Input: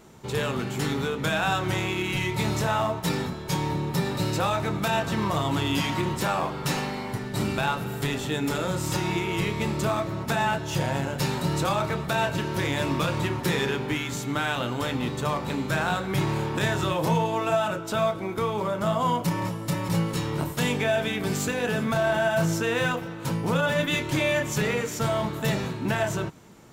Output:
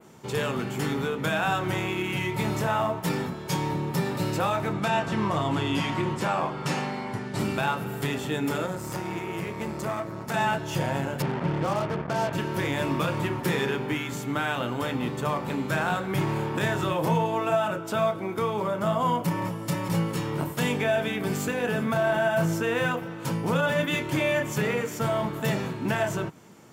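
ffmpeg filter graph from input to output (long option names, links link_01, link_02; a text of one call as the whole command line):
ffmpeg -i in.wav -filter_complex "[0:a]asettb=1/sr,asplit=3[link_01][link_02][link_03];[link_01]atrim=end=4.734[link_04];[link_02]atrim=start=4.73:end=7.39,asetpts=PTS-STARTPTS,afade=type=in:duration=0.004:curve=qsin,afade=type=out:start_time=2.656:duration=0.004:curve=qsin,lowpass=8400,asplit=2[link_05][link_06];[link_06]adelay=19,volume=-14dB[link_07];[link_05][link_07]amix=inputs=2:normalize=0,atrim=end_sample=117306[link_08];[link_03]atrim=start=7.386[link_09];[link_04][link_08]acrossfade=duration=0.004:curve1=hsin:curve2=qsin[link_10];[link_10][link_09]acrossfade=duration=0.004:curve1=qsin:curve2=hsin,asettb=1/sr,asplit=3[link_11][link_12][link_13];[link_11]atrim=end=8.664[link_14];[link_12]atrim=start=8.66:end=10.34,asetpts=PTS-STARTPTS,afade=type=in:duration=0.004:curve=qsin,afade=type=out:start_time=1.676:duration=0.004:curve=qsin,equalizer=frequency=3100:width=2.2:gain=-6.5,aeval=exprs='(tanh(12.6*val(0)+0.65)-tanh(0.65))/12.6':channel_layout=same,bandreject=frequency=50:width_type=h:width=6,bandreject=frequency=100:width_type=h:width=6,bandreject=frequency=150:width_type=h:width=6,bandreject=frequency=200:width_type=h:width=6,bandreject=frequency=250:width_type=h:width=6,bandreject=frequency=300:width_type=h:width=6,bandreject=frequency=350:width_type=h:width=6,bandreject=frequency=400:width_type=h:width=6[link_15];[link_13]atrim=start=10.336[link_16];[link_14][link_15]acrossfade=duration=0.004:curve1=hsin:curve2=qsin[link_17];[link_17][link_16]acrossfade=duration=0.004:curve1=qsin:curve2=hsin,asettb=1/sr,asplit=3[link_18][link_19][link_20];[link_18]atrim=end=11.224[link_21];[link_19]atrim=start=11.22:end=12.33,asetpts=PTS-STARTPTS,afade=type=in:duration=0.004:curve=qsin,afade=type=out:start_time=1.106:duration=0.004:curve=qsin,lowpass=1100,acrusher=bits=4:mix=0:aa=0.5[link_22];[link_20]atrim=start=12.326[link_23];[link_21][link_22]acrossfade=duration=0.004:curve1=hsin:curve2=qsin[link_24];[link_24][link_23]acrossfade=duration=0.004:curve1=qsin:curve2=hsin,highpass=110,bandreject=frequency=3900:width=14,adynamicequalizer=threshold=0.00398:dfrequency=5700:dqfactor=0.75:tfrequency=5700:tqfactor=0.75:attack=5:release=100:ratio=0.375:range=3:mode=cutabove:tftype=bell" out.wav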